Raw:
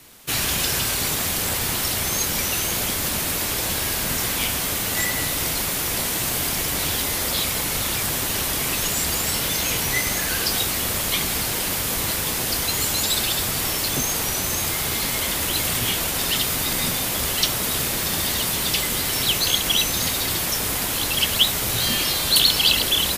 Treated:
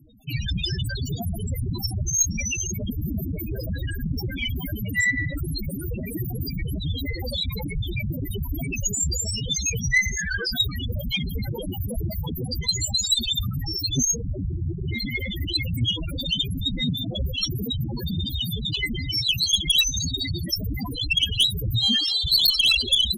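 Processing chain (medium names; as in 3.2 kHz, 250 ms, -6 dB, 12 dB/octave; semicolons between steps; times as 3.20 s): 14.15–14.85 s: median filter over 25 samples; loudest bins only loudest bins 4; Chebyshev shaper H 3 -9 dB, 5 -7 dB, 6 -28 dB, 7 -18 dB, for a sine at -12.5 dBFS; trim +6.5 dB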